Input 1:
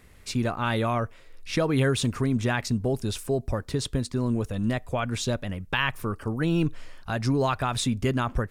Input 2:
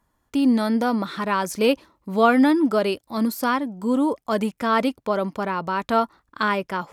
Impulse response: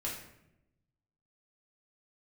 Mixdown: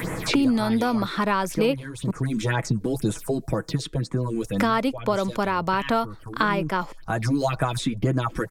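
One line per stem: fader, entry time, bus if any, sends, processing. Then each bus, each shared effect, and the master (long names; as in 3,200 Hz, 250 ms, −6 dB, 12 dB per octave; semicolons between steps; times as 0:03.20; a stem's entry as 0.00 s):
0.0 dB, 0.00 s, no send, notch filter 2,800 Hz, Q 13; comb filter 6.2 ms, depth 66%; all-pass phaser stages 4, 2 Hz, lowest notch 100–4,500 Hz; automatic ducking −11 dB, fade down 1.50 s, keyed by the second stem
−0.5 dB, 0.00 s, muted 0:02.11–0:04.52, no send, no processing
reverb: not used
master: multiband upward and downward compressor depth 100%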